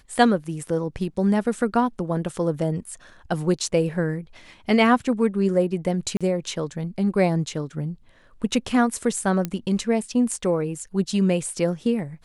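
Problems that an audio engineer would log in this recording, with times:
0:06.17–0:06.21: drop-out 36 ms
0:09.45: click −12 dBFS

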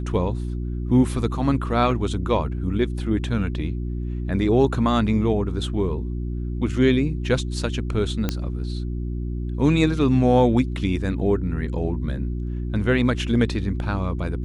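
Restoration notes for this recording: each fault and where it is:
mains hum 60 Hz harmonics 6 −27 dBFS
0:01.91: drop-out 4.2 ms
0:08.29: click −9 dBFS

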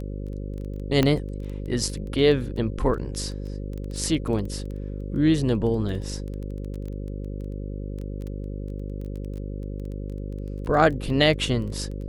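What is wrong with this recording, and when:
mains buzz 50 Hz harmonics 11 −32 dBFS
surface crackle 12 per second −32 dBFS
0:01.03: click −8 dBFS

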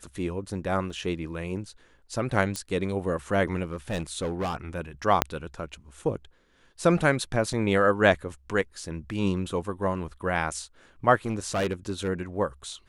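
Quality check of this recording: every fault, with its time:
0:00.90: drop-out 2.5 ms
0:02.56: click −16 dBFS
0:03.64–0:04.56: clipping −25 dBFS
0:05.22: click −3 dBFS
0:07.53–0:07.54: drop-out 5.7 ms
0:11.26–0:12.09: clipping −22.5 dBFS

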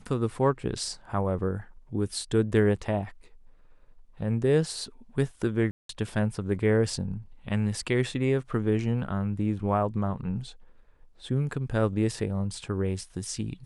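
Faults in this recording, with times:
0:05.71–0:05.89: drop-out 183 ms

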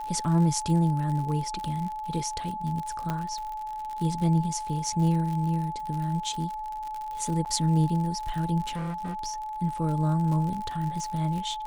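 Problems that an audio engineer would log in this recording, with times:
surface crackle 73 per second −33 dBFS
whistle 860 Hz −32 dBFS
0:03.10: click −16 dBFS
0:07.45–0:07.46: drop-out 8.6 ms
0:08.67–0:09.15: clipping −29 dBFS

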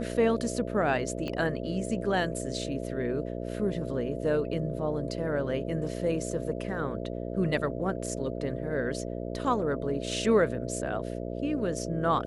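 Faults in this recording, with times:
mains buzz 60 Hz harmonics 11 −35 dBFS
0:01.28: click −22 dBFS

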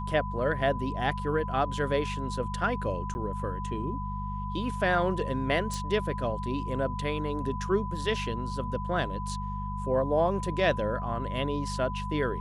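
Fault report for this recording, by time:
mains hum 50 Hz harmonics 4 −35 dBFS
whistle 1,000 Hz −36 dBFS
0:03.14–0:03.15: drop-out 10 ms
0:05.74: click

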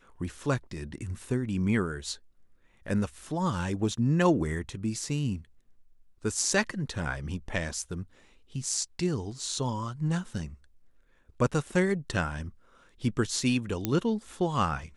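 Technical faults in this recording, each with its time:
0:13.85: click −12 dBFS

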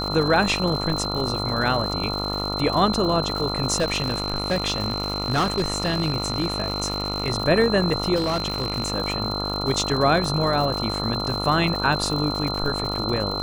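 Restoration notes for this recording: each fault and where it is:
mains buzz 50 Hz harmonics 28 −29 dBFS
surface crackle 150 per second −28 dBFS
whistle 4,100 Hz −28 dBFS
0:03.78–0:07.30: clipping −17 dBFS
0:08.15–0:08.92: clipping −19 dBFS

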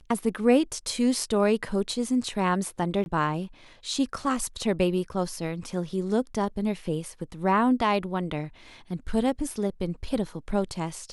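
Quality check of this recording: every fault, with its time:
0:03.04–0:03.06: drop-out 21 ms

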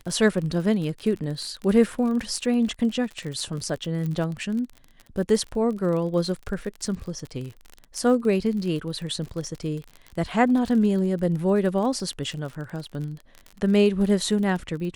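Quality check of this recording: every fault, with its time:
surface crackle 43 per second −31 dBFS
0:04.06: click −20 dBFS

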